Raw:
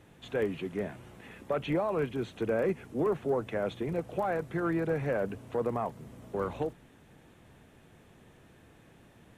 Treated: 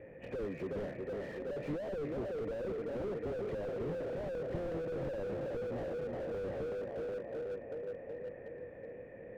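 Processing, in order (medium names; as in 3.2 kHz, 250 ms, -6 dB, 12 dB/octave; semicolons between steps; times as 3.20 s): knee-point frequency compression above 2 kHz 1.5:1; in parallel at -5 dB: decimation with a swept rate 23×, swing 100% 0.33 Hz; on the sum: compression 6:1, threshold -31 dBFS, peak gain reduction 9.5 dB; cascade formant filter e; on a send: tape echo 371 ms, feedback 77%, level -6 dB, low-pass 1.4 kHz; on the sum: slew-rate limiter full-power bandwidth 1.2 Hz; trim +15 dB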